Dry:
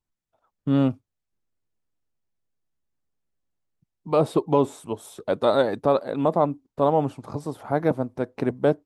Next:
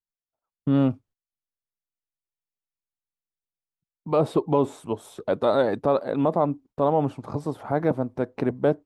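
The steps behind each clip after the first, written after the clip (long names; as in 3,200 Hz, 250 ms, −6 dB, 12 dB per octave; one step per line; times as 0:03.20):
noise gate −50 dBFS, range −21 dB
in parallel at +1.5 dB: brickwall limiter −17 dBFS, peak gain reduction 10 dB
on the sum: high-shelf EQ 4,300 Hz −8 dB
level −4.5 dB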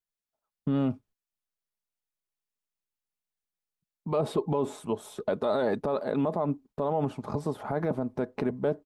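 brickwall limiter −18 dBFS, peak gain reduction 9 dB
comb filter 4.8 ms, depth 31%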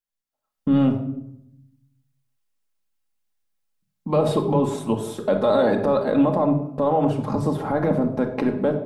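automatic gain control gain up to 8 dB
rectangular room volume 2,000 cubic metres, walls furnished, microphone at 2.2 metres
level −2 dB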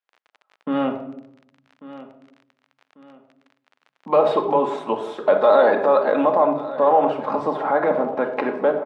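surface crackle 30 per second −37 dBFS
band-pass filter 570–2,400 Hz
repeating echo 1,143 ms, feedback 34%, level −16.5 dB
level +7.5 dB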